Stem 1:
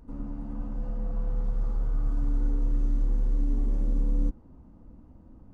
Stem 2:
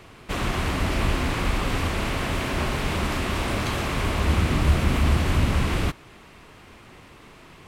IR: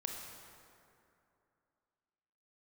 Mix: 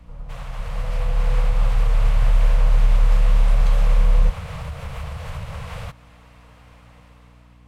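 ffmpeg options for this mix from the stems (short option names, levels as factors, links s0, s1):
-filter_complex "[0:a]volume=1.19[s0];[1:a]equalizer=f=125:t=o:w=1:g=6,equalizer=f=250:t=o:w=1:g=-10,equalizer=f=500:t=o:w=1:g=6,equalizer=f=1000:t=o:w=1:g=3,acompressor=threshold=0.0708:ratio=5,volume=0.211[s1];[s0][s1]amix=inputs=2:normalize=0,afftfilt=real='re*(1-between(b*sr/4096,200,440))':imag='im*(1-between(b*sr/4096,200,440))':win_size=4096:overlap=0.75,dynaudnorm=f=340:g=5:m=2.66,aeval=exprs='val(0)+0.00398*(sin(2*PI*60*n/s)+sin(2*PI*2*60*n/s)/2+sin(2*PI*3*60*n/s)/3+sin(2*PI*4*60*n/s)/4+sin(2*PI*5*60*n/s)/5)':c=same"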